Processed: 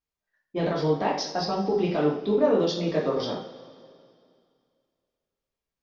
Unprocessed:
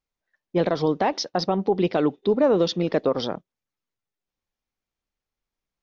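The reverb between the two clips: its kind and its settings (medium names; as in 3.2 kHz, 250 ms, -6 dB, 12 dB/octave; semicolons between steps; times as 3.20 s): two-slope reverb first 0.46 s, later 2.4 s, from -18 dB, DRR -4.5 dB; trim -8 dB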